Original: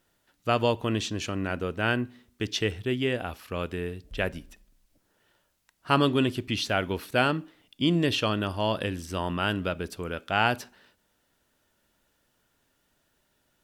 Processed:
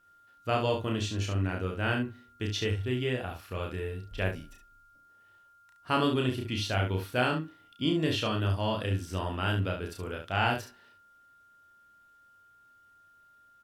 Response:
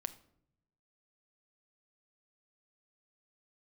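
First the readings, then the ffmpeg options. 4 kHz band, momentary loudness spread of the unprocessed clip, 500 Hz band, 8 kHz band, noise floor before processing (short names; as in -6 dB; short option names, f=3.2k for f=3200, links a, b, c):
-3.5 dB, 10 LU, -3.5 dB, -3.5 dB, -72 dBFS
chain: -af "equalizer=f=100:t=o:w=0.23:g=11,aeval=exprs='val(0)+0.00126*sin(2*PI*1400*n/s)':c=same,aecho=1:1:32.07|69.97:0.708|0.447,volume=-6dB"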